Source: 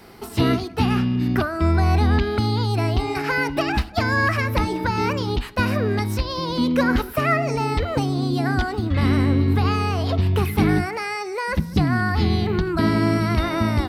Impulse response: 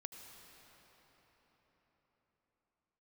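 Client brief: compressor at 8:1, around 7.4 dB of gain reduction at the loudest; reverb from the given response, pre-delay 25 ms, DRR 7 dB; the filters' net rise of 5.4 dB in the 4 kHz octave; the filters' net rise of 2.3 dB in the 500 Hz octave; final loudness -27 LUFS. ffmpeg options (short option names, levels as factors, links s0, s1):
-filter_complex "[0:a]equalizer=f=500:t=o:g=3,equalizer=f=4000:t=o:g=6.5,acompressor=threshold=0.0891:ratio=8,asplit=2[s0][s1];[1:a]atrim=start_sample=2205,adelay=25[s2];[s1][s2]afir=irnorm=-1:irlink=0,volume=0.708[s3];[s0][s3]amix=inputs=2:normalize=0,volume=0.75"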